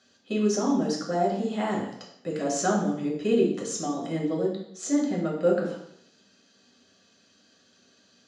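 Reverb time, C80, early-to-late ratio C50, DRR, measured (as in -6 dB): 0.70 s, 7.5 dB, 4.5 dB, -3.5 dB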